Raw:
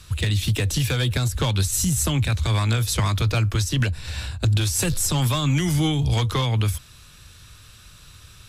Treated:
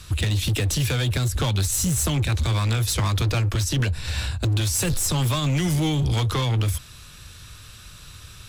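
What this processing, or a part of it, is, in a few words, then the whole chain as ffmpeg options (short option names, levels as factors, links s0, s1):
limiter into clipper: -af "alimiter=limit=0.141:level=0:latency=1:release=113,asoftclip=type=hard:threshold=0.0794,volume=1.5"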